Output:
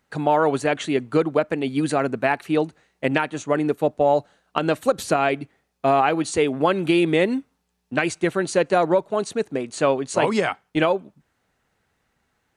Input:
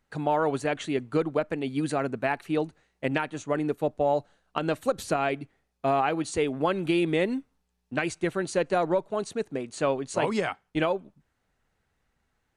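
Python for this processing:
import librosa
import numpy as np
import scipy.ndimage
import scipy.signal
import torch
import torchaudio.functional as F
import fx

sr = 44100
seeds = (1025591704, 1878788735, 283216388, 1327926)

y = fx.highpass(x, sr, hz=110.0, slope=6)
y = y * 10.0 ** (6.5 / 20.0)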